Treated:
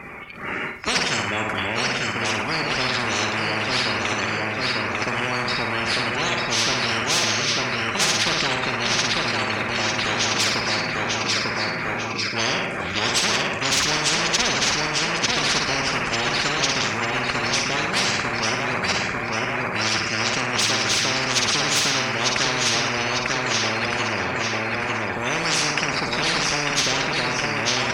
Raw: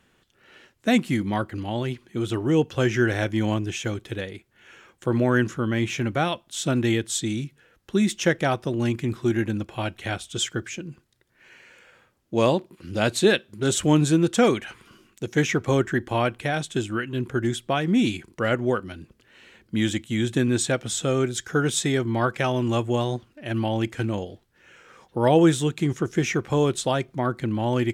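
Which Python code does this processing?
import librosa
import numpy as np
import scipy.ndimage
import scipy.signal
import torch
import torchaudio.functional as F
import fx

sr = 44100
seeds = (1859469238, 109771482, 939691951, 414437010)

p1 = fx.spec_quant(x, sr, step_db=30)
p2 = p1 + 0.32 * np.pad(p1, (int(5.0 * sr / 1000.0), 0))[:len(p1)]
p3 = p2 + fx.echo_feedback(p2, sr, ms=897, feedback_pct=37, wet_db=-6.5, dry=0)
p4 = fx.formant_shift(p3, sr, semitones=-6)
p5 = fx.high_shelf(p4, sr, hz=5500.0, db=-10.5)
p6 = 10.0 ** (-22.0 / 20.0) * np.tanh(p5 / 10.0 ** (-22.0 / 20.0))
p7 = p5 + F.gain(torch.from_numpy(p6), -7.0).numpy()
p8 = scipy.signal.sosfilt(scipy.signal.butter(2, 54.0, 'highpass', fs=sr, output='sos'), p7)
p9 = fx.peak_eq(p8, sr, hz=2300.0, db=8.5, octaves=0.41)
p10 = fx.notch(p9, sr, hz=4100.0, q=20.0)
p11 = fx.room_flutter(p10, sr, wall_m=9.4, rt60_s=0.47)
y = fx.spectral_comp(p11, sr, ratio=10.0)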